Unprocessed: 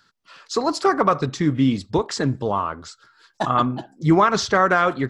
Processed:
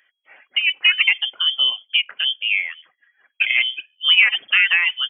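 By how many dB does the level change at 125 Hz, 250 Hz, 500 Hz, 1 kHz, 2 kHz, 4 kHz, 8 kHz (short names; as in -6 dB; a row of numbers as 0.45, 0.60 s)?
under -40 dB, under -40 dB, under -30 dB, -20.0 dB, +10.5 dB, +17.0 dB, under -40 dB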